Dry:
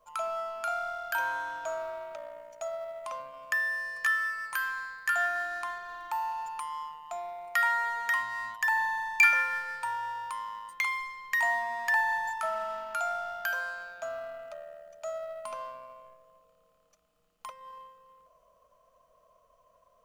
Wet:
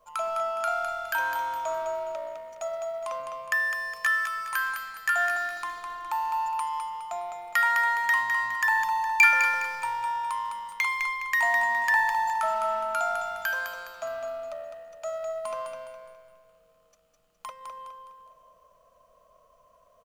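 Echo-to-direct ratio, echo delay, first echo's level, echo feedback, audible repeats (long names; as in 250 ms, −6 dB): −5.5 dB, 207 ms, −6.0 dB, 39%, 4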